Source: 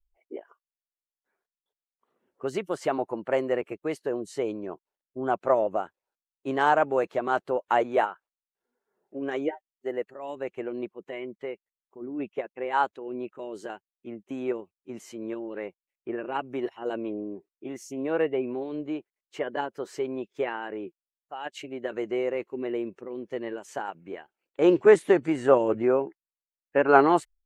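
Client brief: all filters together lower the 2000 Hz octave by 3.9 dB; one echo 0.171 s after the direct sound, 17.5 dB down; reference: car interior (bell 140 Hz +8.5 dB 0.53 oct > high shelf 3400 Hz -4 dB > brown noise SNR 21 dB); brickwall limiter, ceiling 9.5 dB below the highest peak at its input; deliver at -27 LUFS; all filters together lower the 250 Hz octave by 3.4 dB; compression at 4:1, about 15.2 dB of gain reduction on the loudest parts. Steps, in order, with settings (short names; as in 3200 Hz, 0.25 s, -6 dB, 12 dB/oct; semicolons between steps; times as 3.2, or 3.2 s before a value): bell 250 Hz -6 dB; bell 2000 Hz -4.5 dB; compressor 4:1, threshold -32 dBFS; limiter -28 dBFS; bell 140 Hz +8.5 dB 0.53 oct; high shelf 3400 Hz -4 dB; echo 0.171 s -17.5 dB; brown noise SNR 21 dB; gain +13 dB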